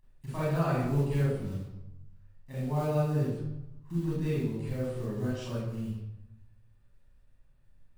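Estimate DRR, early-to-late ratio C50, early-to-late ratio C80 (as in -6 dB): -8.5 dB, -2.0 dB, 3.0 dB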